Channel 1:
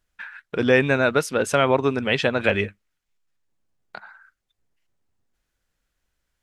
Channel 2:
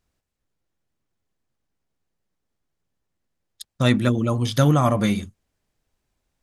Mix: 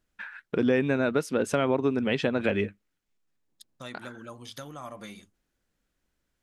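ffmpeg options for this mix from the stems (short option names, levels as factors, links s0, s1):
-filter_complex "[0:a]equalizer=f=260:w=0.73:g=9,volume=0.668[s0];[1:a]acompressor=threshold=0.126:ratio=6,highpass=f=540:p=1,volume=0.224[s1];[s0][s1]amix=inputs=2:normalize=0,acompressor=threshold=0.0501:ratio=2"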